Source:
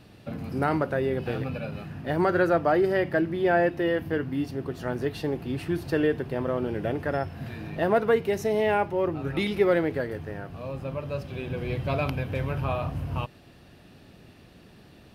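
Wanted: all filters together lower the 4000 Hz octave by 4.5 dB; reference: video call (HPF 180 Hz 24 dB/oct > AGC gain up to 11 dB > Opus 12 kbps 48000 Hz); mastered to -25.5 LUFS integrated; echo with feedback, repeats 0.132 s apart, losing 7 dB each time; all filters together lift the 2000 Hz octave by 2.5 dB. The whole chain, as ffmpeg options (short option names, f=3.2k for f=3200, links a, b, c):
-af "highpass=f=180:w=0.5412,highpass=f=180:w=1.3066,equalizer=f=2k:t=o:g=5,equalizer=f=4k:t=o:g=-9,aecho=1:1:132|264|396|528|660:0.447|0.201|0.0905|0.0407|0.0183,dynaudnorm=m=11dB,volume=1dB" -ar 48000 -c:a libopus -b:a 12k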